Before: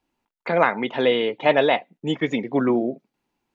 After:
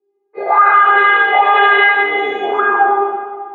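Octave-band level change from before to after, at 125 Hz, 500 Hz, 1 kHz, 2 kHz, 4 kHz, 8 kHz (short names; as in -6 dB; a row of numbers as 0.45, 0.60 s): under -20 dB, +2.0 dB, +16.5 dB, +16.5 dB, +6.5 dB, n/a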